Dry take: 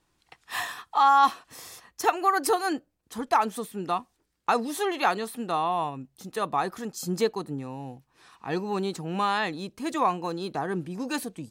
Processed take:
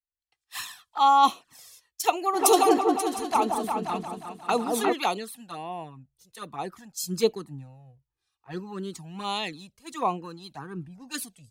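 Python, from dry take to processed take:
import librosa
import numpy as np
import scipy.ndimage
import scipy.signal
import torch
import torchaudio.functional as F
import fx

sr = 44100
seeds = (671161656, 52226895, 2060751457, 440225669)

y = fx.high_shelf(x, sr, hz=2700.0, db=4.5)
y = fx.env_flanger(y, sr, rest_ms=2.7, full_db=-20.5)
y = fx.echo_opening(y, sr, ms=178, hz=750, octaves=2, feedback_pct=70, wet_db=0, at=(2.33, 4.92), fade=0.02)
y = fx.band_widen(y, sr, depth_pct=100)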